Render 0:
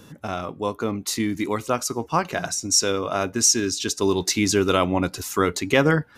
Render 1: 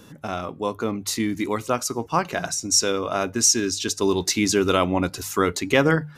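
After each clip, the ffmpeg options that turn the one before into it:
ffmpeg -i in.wav -af "bandreject=frequency=50:width_type=h:width=6,bandreject=frequency=100:width_type=h:width=6,bandreject=frequency=150:width_type=h:width=6" out.wav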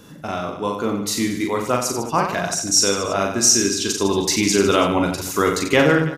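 ffmpeg -i in.wav -af "aecho=1:1:40|90|152.5|230.6|328.3:0.631|0.398|0.251|0.158|0.1,volume=1.5dB" out.wav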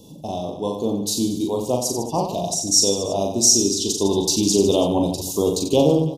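ffmpeg -i in.wav -af "asuperstop=centerf=1700:order=8:qfactor=0.74" out.wav

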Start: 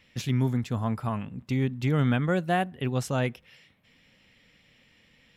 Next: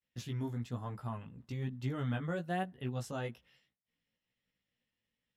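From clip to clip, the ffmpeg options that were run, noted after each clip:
ffmpeg -i in.wav -af "flanger=delay=15.5:depth=2.8:speed=1.1,agate=range=-33dB:threshold=-53dB:ratio=3:detection=peak,equalizer=frequency=2300:width=7.6:gain=-7.5,volume=-8dB" out.wav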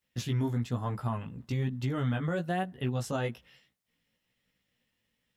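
ffmpeg -i in.wav -af "alimiter=level_in=6.5dB:limit=-24dB:level=0:latency=1:release=144,volume=-6.5dB,volume=8.5dB" out.wav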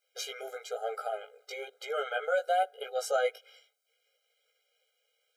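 ffmpeg -i in.wav -af "afftfilt=real='re*eq(mod(floor(b*sr/1024/410),2),1)':imag='im*eq(mod(floor(b*sr/1024/410),2),1)':win_size=1024:overlap=0.75,volume=7dB" out.wav

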